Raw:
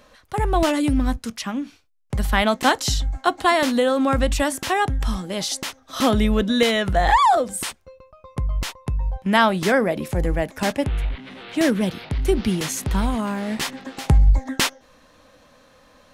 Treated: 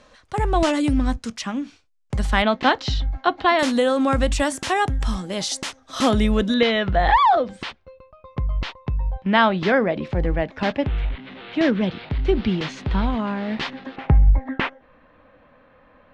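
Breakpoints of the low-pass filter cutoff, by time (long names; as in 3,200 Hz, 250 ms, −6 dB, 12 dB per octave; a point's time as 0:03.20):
low-pass filter 24 dB per octave
8,600 Hz
from 0:02.42 4,200 Hz
from 0:03.59 9,600 Hz
from 0:06.54 4,100 Hz
from 0:13.96 2,500 Hz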